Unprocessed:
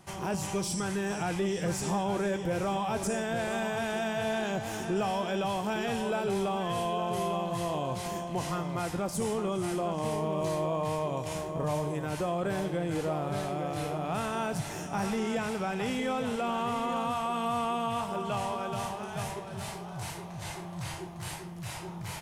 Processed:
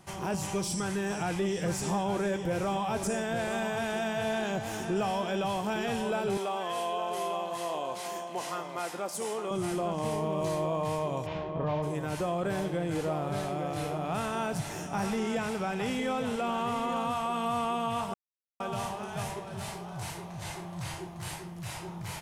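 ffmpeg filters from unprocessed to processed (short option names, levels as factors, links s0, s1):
-filter_complex "[0:a]asettb=1/sr,asplit=3[s0][s1][s2];[s0]atrim=end=6.374[s3];[s1]atrim=start=6.37:end=9.51,asetpts=PTS-STARTPTS,afade=t=in:d=0.004:c=qsin,afade=t=out:st=3.136:d=0.004:c=qsin,highpass=400[s4];[s2]atrim=start=9.506[s5];[s3][s4]acrossfade=d=0.004:c1=hsin:c2=qsin[s6];[s6][s5]acrossfade=d=0.004:c1=qsin:c2=hsin,asplit=3[s7][s8][s9];[s7]afade=t=out:st=11.25:d=0.02[s10];[s8]lowpass=f=3700:w=0.5412,lowpass=f=3700:w=1.3066,afade=t=in:st=11.25:d=0.02,afade=t=out:st=11.82:d=0.02[s11];[s9]afade=t=in:st=11.82:d=0.02[s12];[s10][s11][s12]amix=inputs=3:normalize=0,asplit=3[s13][s14][s15];[s13]atrim=end=18.14,asetpts=PTS-STARTPTS,afade=t=out:st=18.136:d=0.004:c=hsin[s16];[s14]atrim=start=18.14:end=18.6,asetpts=PTS-STARTPTS,volume=0[s17];[s15]atrim=start=18.6,asetpts=PTS-STARTPTS,afade=t=in:d=0.004:c=hsin[s18];[s16][s17][s18]concat=n=3:v=0:a=1"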